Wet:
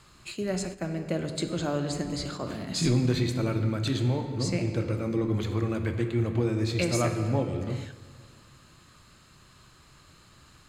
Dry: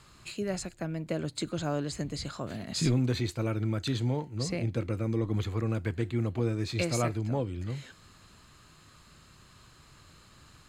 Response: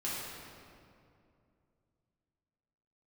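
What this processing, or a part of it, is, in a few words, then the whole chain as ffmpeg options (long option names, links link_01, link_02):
keyed gated reverb: -filter_complex "[0:a]asplit=3[link_01][link_02][link_03];[1:a]atrim=start_sample=2205[link_04];[link_02][link_04]afir=irnorm=-1:irlink=0[link_05];[link_03]apad=whole_len=471368[link_06];[link_05][link_06]sidechaingate=range=-10dB:threshold=-42dB:ratio=16:detection=peak,volume=-7.5dB[link_07];[link_01][link_07]amix=inputs=2:normalize=0,bandreject=frequency=50:width_type=h:width=6,bandreject=frequency=100:width_type=h:width=6,bandreject=frequency=150:width_type=h:width=6"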